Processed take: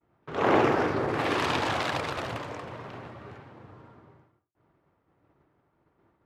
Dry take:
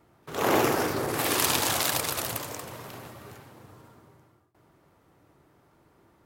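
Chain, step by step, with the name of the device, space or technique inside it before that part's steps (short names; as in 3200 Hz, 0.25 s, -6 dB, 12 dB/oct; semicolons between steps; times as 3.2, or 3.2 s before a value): hearing-loss simulation (LPF 2600 Hz 12 dB/oct; expander -54 dBFS); gain +1.5 dB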